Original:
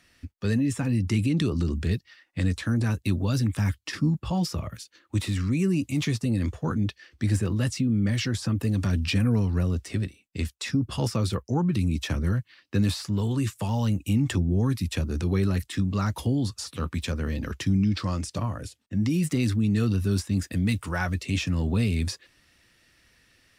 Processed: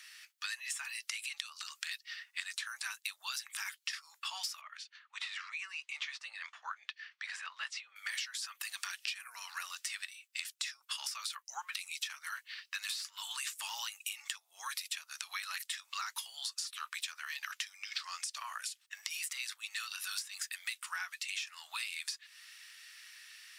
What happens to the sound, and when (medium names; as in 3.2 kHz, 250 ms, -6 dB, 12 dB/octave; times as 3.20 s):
4.61–7.96 s: tape spacing loss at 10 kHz 29 dB
whole clip: Bessel high-pass 1.9 kHz, order 8; compression 10:1, threshold -47 dBFS; trim +10.5 dB